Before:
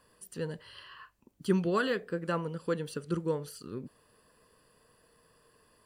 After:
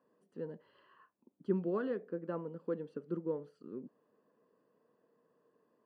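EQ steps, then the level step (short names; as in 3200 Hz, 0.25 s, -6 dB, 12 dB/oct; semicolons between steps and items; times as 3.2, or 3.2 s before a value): ladder band-pass 290 Hz, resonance 25%; tilt +3.5 dB/oct; +12.5 dB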